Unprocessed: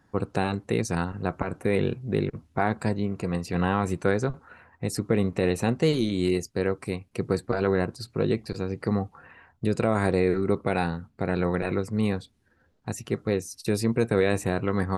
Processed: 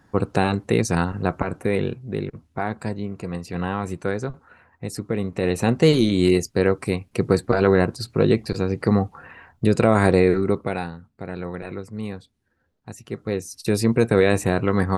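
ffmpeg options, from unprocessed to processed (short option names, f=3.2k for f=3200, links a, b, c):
-af "volume=25.5dB,afade=t=out:st=1.2:d=0.84:silence=0.421697,afade=t=in:st=5.29:d=0.59:silence=0.375837,afade=t=out:st=10.15:d=0.76:silence=0.237137,afade=t=in:st=13.01:d=0.85:silence=0.281838"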